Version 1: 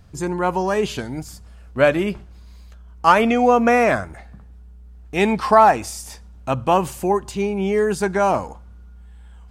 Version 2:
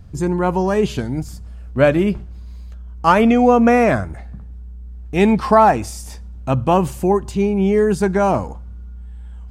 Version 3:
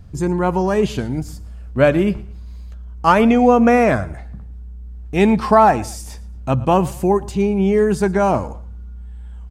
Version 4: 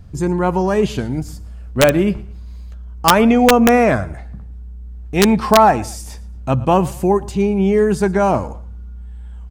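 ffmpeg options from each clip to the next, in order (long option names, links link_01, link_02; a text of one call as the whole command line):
ffmpeg -i in.wav -af "lowshelf=frequency=370:gain=10.5,volume=-1.5dB" out.wav
ffmpeg -i in.wav -af "aecho=1:1:114|228:0.0891|0.0285" out.wav
ffmpeg -i in.wav -af "aeval=exprs='(mod(1.33*val(0)+1,2)-1)/1.33':channel_layout=same,volume=1dB" out.wav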